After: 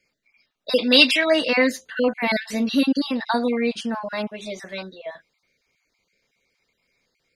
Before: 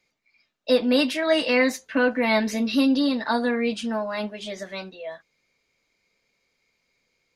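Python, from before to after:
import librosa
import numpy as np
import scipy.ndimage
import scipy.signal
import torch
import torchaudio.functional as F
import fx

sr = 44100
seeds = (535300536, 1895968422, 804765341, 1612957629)

y = fx.spec_dropout(x, sr, seeds[0], share_pct=28)
y = fx.weighting(y, sr, curve='D', at=(0.74, 1.23), fade=0.02)
y = y * librosa.db_to_amplitude(2.0)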